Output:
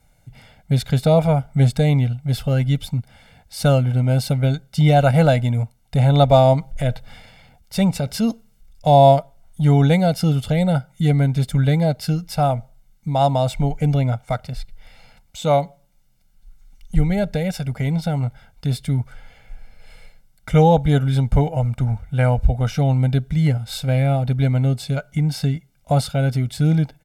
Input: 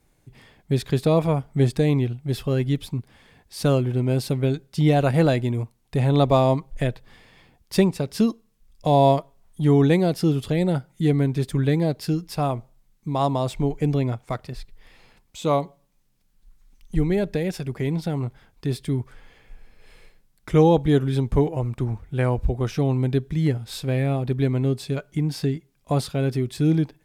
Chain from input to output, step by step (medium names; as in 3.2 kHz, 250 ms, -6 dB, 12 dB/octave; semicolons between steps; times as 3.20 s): comb 1.4 ms, depth 85%; 6.53–8.87 s: transient shaper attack -5 dB, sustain +4 dB; trim +2 dB